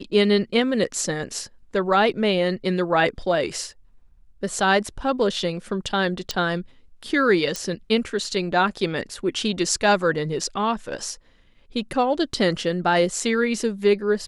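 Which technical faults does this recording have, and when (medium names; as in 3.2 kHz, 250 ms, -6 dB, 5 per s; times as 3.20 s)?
6.31 s: pop -11 dBFS
7.56 s: pop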